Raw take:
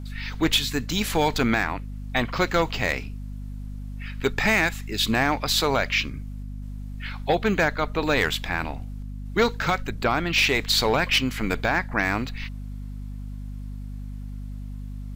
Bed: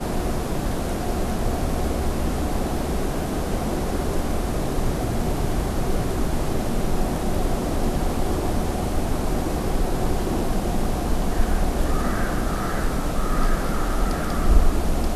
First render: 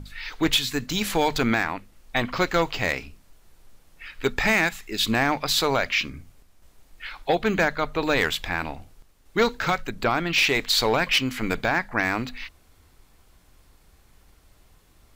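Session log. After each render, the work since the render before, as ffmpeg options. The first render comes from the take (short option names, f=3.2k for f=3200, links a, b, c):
-af "bandreject=f=50:t=h:w=6,bandreject=f=100:t=h:w=6,bandreject=f=150:t=h:w=6,bandreject=f=200:t=h:w=6,bandreject=f=250:t=h:w=6"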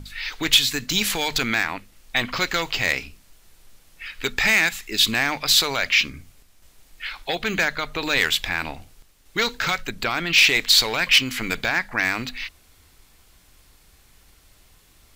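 -filter_complex "[0:a]acrossover=split=1800[a][b];[a]alimiter=limit=-20dB:level=0:latency=1:release=75[c];[b]acontrast=83[d];[c][d]amix=inputs=2:normalize=0"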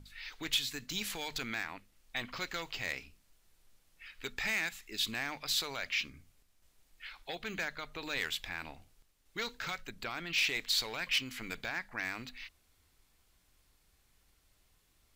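-af "volume=-15.5dB"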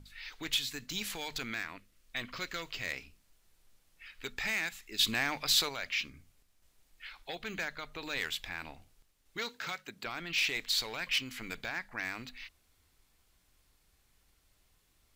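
-filter_complex "[0:a]asettb=1/sr,asplit=3[a][b][c];[a]atrim=end=1.524[d];[b]atrim=start=1.52:end=2.92,asetpts=PTS-STARTPTS,afade=t=in:d=0.004:c=qsin,afade=t=out:st=1.396:d=0.004:c=qsin,equalizer=f=820:t=o:w=0.26:g=-10[e];[c]atrim=start=2.916[f];[d][e]acrossfade=d=0.004:c1=hsin:c2=qsin[g];[g][f]acrossfade=d=0.004:c1=qsin:c2=hsin,asettb=1/sr,asplit=3[h][i][j];[h]atrim=end=4.994[k];[i]atrim=start=4.99:end=5.69,asetpts=PTS-STARTPTS,afade=t=in:d=0.004:c=qsin,afade=t=out:st=0.696:d=0.004:c=qsin,acontrast=38[l];[j]atrim=start=5.686[m];[k][l]acrossfade=d=0.004:c1=hsin:c2=qsin[n];[n][m]acrossfade=d=0.004:c1=qsin:c2=hsin,asettb=1/sr,asplit=3[o][p][q];[o]atrim=end=9.384[r];[p]atrim=start=9.38:end=10.06,asetpts=PTS-STARTPTS,afade=t=in:d=0.004:c=qsin,afade=t=out:st=0.676:d=0.004:c=qsin,highpass=150[s];[q]atrim=start=10.056[t];[r][s]acrossfade=d=0.004:c1=hsin:c2=qsin[u];[u][t]acrossfade=d=0.004:c1=qsin:c2=hsin"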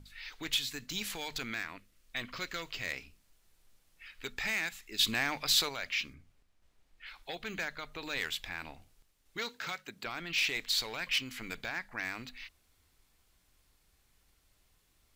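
-filter_complex "[0:a]asplit=3[a][b][c];[a]afade=t=out:st=6.13:d=0.02[d];[b]lowpass=f=2.8k:p=1,afade=t=in:st=6.13:d=0.02,afade=t=out:st=7.06:d=0.02[e];[c]afade=t=in:st=7.06:d=0.02[f];[d][e][f]amix=inputs=3:normalize=0"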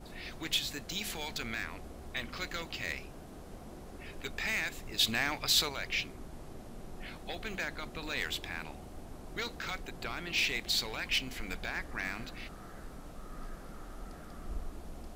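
-filter_complex "[1:a]volume=-23.5dB[a];[0:a][a]amix=inputs=2:normalize=0"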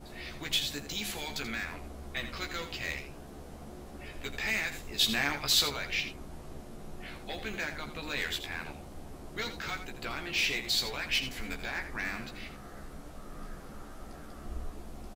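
-filter_complex "[0:a]asplit=2[a][b];[b]adelay=14,volume=-4.5dB[c];[a][c]amix=inputs=2:normalize=0,aecho=1:1:83:0.299"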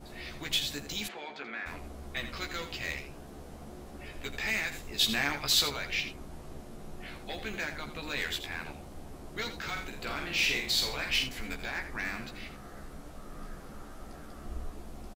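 -filter_complex "[0:a]asplit=3[a][b][c];[a]afade=t=out:st=1.07:d=0.02[d];[b]highpass=350,lowpass=2.1k,afade=t=in:st=1.07:d=0.02,afade=t=out:st=1.65:d=0.02[e];[c]afade=t=in:st=1.65:d=0.02[f];[d][e][f]amix=inputs=3:normalize=0,asplit=3[g][h][i];[g]afade=t=out:st=9.75:d=0.02[j];[h]asplit=2[k][l];[l]adelay=47,volume=-4dB[m];[k][m]amix=inputs=2:normalize=0,afade=t=in:st=9.75:d=0.02,afade=t=out:st=11.23:d=0.02[n];[i]afade=t=in:st=11.23:d=0.02[o];[j][n][o]amix=inputs=3:normalize=0"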